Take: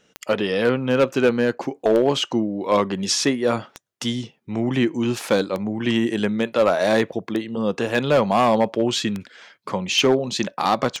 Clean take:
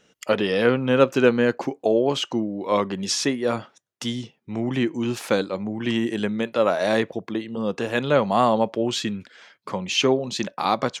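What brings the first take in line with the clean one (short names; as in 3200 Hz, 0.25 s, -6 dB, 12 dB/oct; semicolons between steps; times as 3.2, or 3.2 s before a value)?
clip repair -10 dBFS; de-click; gain correction -3 dB, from 1.75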